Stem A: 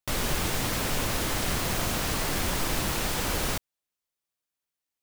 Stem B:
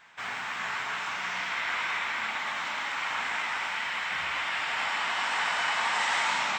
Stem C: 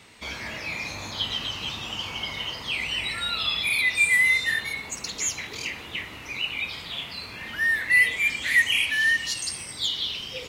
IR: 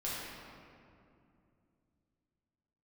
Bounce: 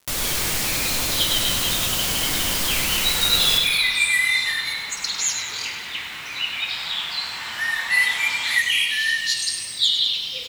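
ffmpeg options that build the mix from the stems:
-filter_complex "[0:a]volume=-4dB,asplit=3[link_01][link_02][link_03];[link_02]volume=-11.5dB[link_04];[link_03]volume=-5dB[link_05];[1:a]adelay=2000,volume=-11.5dB,asplit=2[link_06][link_07];[link_07]volume=-9dB[link_08];[2:a]equalizer=frequency=3900:width_type=o:width=0.56:gain=9,flanger=delay=3.9:depth=5.2:regen=-50:speed=1:shape=triangular,volume=-4.5dB,asplit=3[link_09][link_10][link_11];[link_10]volume=-9.5dB[link_12];[link_11]volume=-7.5dB[link_13];[3:a]atrim=start_sample=2205[link_14];[link_04][link_08][link_12]amix=inputs=3:normalize=0[link_15];[link_15][link_14]afir=irnorm=-1:irlink=0[link_16];[link_05][link_13]amix=inputs=2:normalize=0,aecho=0:1:100|200|300|400|500|600|700|800:1|0.54|0.292|0.157|0.085|0.0459|0.0248|0.0134[link_17];[link_01][link_06][link_09][link_16][link_17]amix=inputs=5:normalize=0,highshelf=frequency=2400:gain=11,aeval=exprs='val(0)*gte(abs(val(0)),0.00944)':channel_layout=same"

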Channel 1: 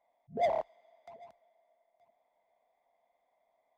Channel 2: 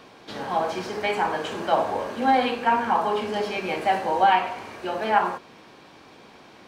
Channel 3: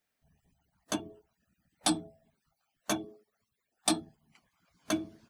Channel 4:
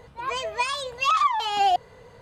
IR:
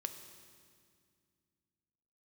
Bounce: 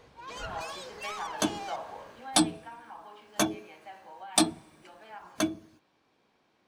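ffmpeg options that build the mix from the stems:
-filter_complex "[0:a]highpass=1200,aeval=exprs='val(0)*sin(2*PI*740*n/s)':channel_layout=same,volume=0dB[link_01];[1:a]acrossover=split=300|630[link_02][link_03][link_04];[link_02]acompressor=threshold=-46dB:ratio=4[link_05];[link_03]acompressor=threshold=-41dB:ratio=4[link_06];[link_04]acompressor=threshold=-21dB:ratio=4[link_07];[link_05][link_06][link_07]amix=inputs=3:normalize=0,volume=-12dB,afade=type=out:start_time=1.76:duration=0.76:silence=0.334965[link_08];[2:a]dynaudnorm=framelen=100:gausssize=9:maxgain=5.5dB,adelay=500,volume=-1dB,asplit=2[link_09][link_10];[link_10]volume=-20.5dB[link_11];[3:a]asoftclip=type=tanh:threshold=-27.5dB,equalizer=frequency=6100:width_type=o:width=0.77:gain=6.5,volume=-14dB,asplit=2[link_12][link_13];[link_13]volume=-7dB[link_14];[4:a]atrim=start_sample=2205[link_15];[link_11][link_14]amix=inputs=2:normalize=0[link_16];[link_16][link_15]afir=irnorm=-1:irlink=0[link_17];[link_01][link_08][link_09][link_12][link_17]amix=inputs=5:normalize=0"

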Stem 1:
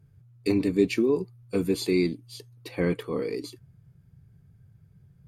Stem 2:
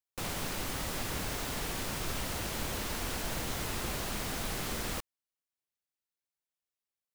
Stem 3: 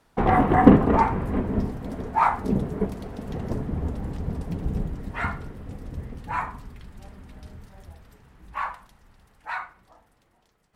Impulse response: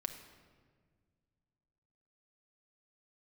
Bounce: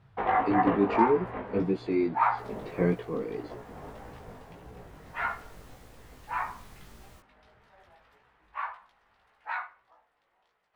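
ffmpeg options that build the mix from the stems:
-filter_complex "[0:a]lowpass=2000,volume=2.5dB[link_01];[1:a]lowshelf=frequency=210:gain=9.5,adelay=2200,volume=-16dB,afade=type=in:start_time=5.03:duration=0.66:silence=0.473151[link_02];[2:a]acrossover=split=490 3900:gain=0.112 1 0.126[link_03][link_04][link_05];[link_03][link_04][link_05]amix=inputs=3:normalize=0,volume=1.5dB[link_06];[link_01][link_02][link_06]amix=inputs=3:normalize=0,flanger=delay=16:depth=3.8:speed=1.7,tremolo=f=0.75:d=0.35"

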